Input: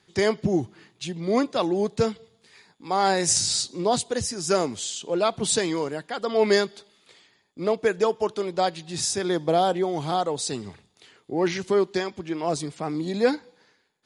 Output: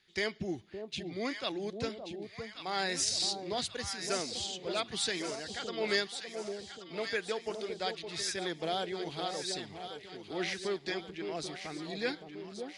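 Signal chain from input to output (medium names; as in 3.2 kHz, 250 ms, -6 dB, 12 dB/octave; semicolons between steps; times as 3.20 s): graphic EQ 125/250/500/1000/2000/4000/8000 Hz -10/-5/-6/-9/+4/+4/-8 dB; tempo 1.1×; echo whose repeats swap between lows and highs 565 ms, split 850 Hz, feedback 70%, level -6 dB; trim -6 dB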